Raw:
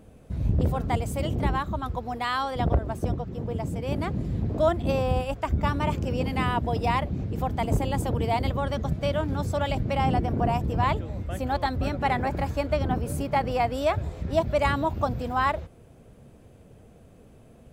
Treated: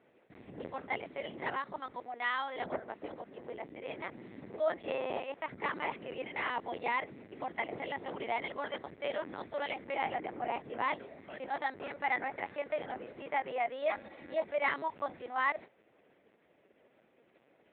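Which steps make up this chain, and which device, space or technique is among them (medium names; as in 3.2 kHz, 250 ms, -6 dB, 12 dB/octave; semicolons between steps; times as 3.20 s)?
talking toy (LPC vocoder at 8 kHz pitch kept; high-pass 360 Hz 12 dB/octave; peaking EQ 2 kHz +10.5 dB 0.5 oct); 13.82–14.43 s: comb 3.6 ms, depth 57%; trim -9 dB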